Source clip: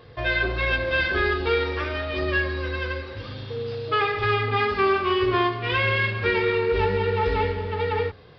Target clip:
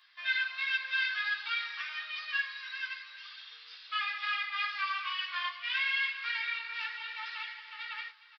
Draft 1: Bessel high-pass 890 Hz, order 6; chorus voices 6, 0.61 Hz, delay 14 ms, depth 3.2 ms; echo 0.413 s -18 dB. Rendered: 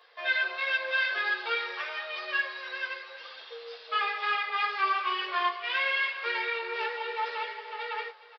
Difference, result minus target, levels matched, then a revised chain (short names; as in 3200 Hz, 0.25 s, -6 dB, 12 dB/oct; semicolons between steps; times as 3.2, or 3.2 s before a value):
1000 Hz band +5.5 dB
Bessel high-pass 2000 Hz, order 6; chorus voices 6, 0.61 Hz, delay 14 ms, depth 3.2 ms; echo 0.413 s -18 dB